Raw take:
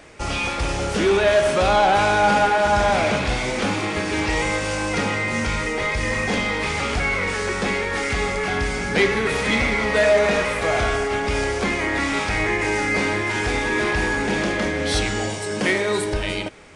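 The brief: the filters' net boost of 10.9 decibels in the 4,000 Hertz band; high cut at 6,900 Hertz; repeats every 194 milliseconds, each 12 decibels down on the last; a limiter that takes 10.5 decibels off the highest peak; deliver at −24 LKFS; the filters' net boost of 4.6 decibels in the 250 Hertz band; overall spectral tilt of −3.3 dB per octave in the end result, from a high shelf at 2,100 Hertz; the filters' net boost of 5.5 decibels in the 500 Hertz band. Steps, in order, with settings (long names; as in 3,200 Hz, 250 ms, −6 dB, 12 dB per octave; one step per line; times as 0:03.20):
low-pass filter 6,900 Hz
parametric band 250 Hz +4 dB
parametric band 500 Hz +5.5 dB
high-shelf EQ 2,100 Hz +6 dB
parametric band 4,000 Hz +8.5 dB
brickwall limiter −10 dBFS
repeating echo 194 ms, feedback 25%, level −12 dB
level −6.5 dB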